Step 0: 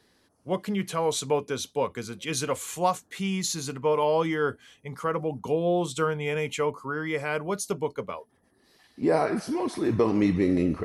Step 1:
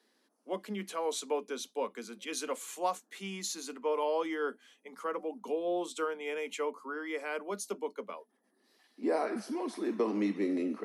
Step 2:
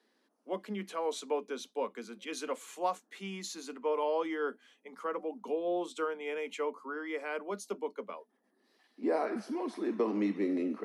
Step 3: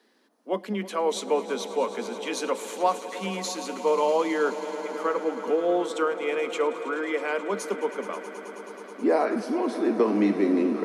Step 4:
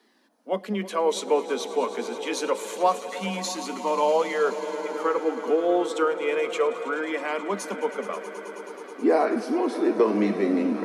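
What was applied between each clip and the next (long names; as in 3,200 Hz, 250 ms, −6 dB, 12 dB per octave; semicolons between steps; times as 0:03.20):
Butterworth high-pass 200 Hz 96 dB per octave; level −7.5 dB
high-shelf EQ 5,400 Hz −9.5 dB
echo that builds up and dies away 107 ms, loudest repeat 5, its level −17 dB; level +8.5 dB
flanger 0.27 Hz, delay 0.9 ms, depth 1.9 ms, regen −57%; level +5.5 dB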